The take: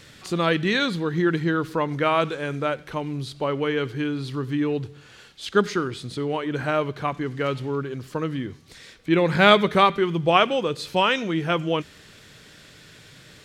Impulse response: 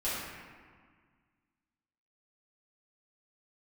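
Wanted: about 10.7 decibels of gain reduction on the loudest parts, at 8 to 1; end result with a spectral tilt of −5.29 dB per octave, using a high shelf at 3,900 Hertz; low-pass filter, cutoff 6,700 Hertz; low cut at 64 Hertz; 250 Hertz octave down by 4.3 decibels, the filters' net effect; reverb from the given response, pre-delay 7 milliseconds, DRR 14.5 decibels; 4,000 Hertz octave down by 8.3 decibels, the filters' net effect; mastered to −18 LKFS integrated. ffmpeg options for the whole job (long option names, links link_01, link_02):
-filter_complex "[0:a]highpass=64,lowpass=6700,equalizer=frequency=250:width_type=o:gain=-6.5,highshelf=frequency=3900:gain=-4.5,equalizer=frequency=4000:width_type=o:gain=-8.5,acompressor=threshold=-23dB:ratio=8,asplit=2[link_01][link_02];[1:a]atrim=start_sample=2205,adelay=7[link_03];[link_02][link_03]afir=irnorm=-1:irlink=0,volume=-22dB[link_04];[link_01][link_04]amix=inputs=2:normalize=0,volume=11.5dB"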